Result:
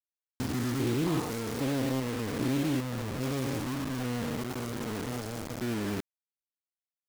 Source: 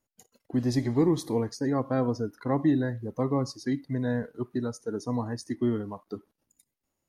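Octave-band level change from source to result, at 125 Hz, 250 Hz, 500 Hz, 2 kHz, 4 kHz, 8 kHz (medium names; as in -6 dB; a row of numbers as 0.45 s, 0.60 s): -2.0 dB, -4.0 dB, -5.0 dB, +3.0 dB, +4.5 dB, +4.0 dB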